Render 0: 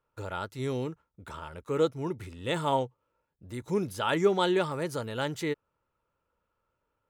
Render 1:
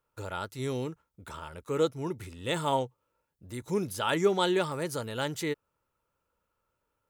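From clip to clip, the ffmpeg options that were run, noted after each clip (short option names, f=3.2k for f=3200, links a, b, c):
-af "highshelf=f=5.1k:g=7.5,volume=-1dB"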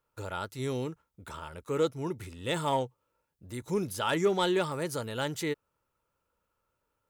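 -af "asoftclip=type=tanh:threshold=-16dB"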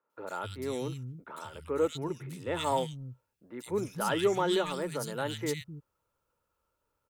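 -filter_complex "[0:a]acrossover=split=190|2200[a][b][c];[c]adelay=100[d];[a]adelay=260[e];[e][b][d]amix=inputs=3:normalize=0"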